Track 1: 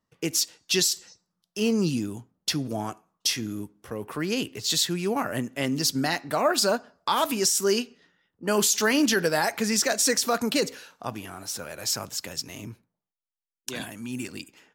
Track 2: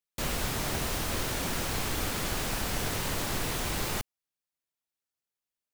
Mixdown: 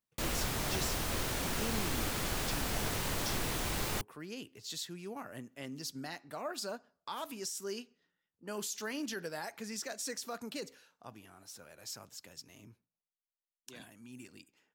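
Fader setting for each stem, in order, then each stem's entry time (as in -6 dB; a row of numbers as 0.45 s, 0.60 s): -17.0 dB, -3.5 dB; 0.00 s, 0.00 s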